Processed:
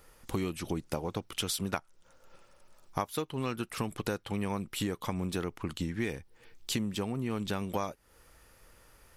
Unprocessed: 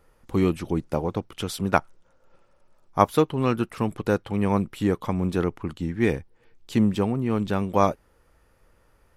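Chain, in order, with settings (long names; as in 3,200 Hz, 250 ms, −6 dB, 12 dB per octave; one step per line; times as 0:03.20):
high-shelf EQ 2,200 Hz +11.5 dB
downward compressor 8 to 1, threshold −30 dBFS, peak gain reduction 19.5 dB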